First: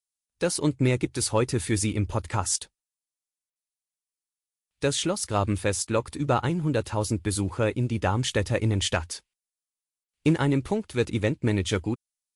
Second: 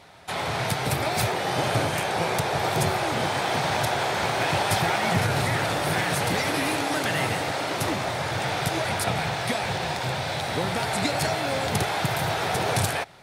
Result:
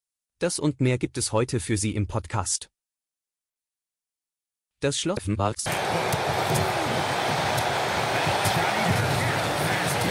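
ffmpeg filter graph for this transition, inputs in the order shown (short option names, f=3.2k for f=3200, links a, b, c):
-filter_complex "[0:a]apad=whole_dur=10.1,atrim=end=10.1,asplit=2[a][b];[a]atrim=end=5.172[c];[b]atrim=start=5.168:end=5.662,asetpts=PTS-STARTPTS,areverse[d];[1:a]atrim=start=1.918:end=6.36[e];[c][d]acrossfade=d=0.004:c1=hsin:c2=hsin[f];[f][e]acrossfade=d=0.004:c1=hsin:c2=hsin"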